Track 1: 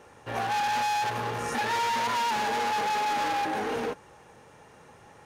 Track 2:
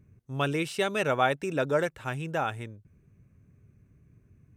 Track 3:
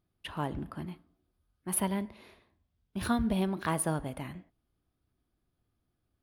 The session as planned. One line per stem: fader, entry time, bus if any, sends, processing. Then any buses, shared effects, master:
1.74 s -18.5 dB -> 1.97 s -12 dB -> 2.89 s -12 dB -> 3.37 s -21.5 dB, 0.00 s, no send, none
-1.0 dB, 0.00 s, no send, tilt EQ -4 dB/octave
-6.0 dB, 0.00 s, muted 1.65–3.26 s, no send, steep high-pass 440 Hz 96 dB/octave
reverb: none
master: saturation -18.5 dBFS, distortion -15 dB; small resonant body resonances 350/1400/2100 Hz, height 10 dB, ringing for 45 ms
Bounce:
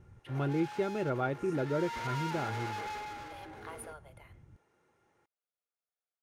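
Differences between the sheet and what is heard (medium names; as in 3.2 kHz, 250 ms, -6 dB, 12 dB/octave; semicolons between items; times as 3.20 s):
stem 2 -1.0 dB -> -12.0 dB; stem 3 -6.0 dB -> -15.0 dB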